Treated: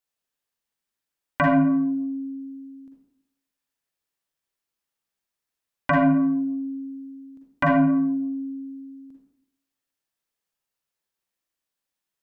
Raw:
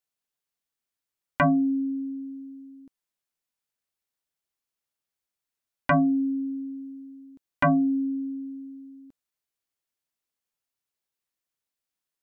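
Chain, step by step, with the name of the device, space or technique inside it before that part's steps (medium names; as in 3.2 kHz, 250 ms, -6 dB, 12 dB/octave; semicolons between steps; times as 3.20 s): bathroom (reverberation RT60 0.75 s, pre-delay 39 ms, DRR -1 dB)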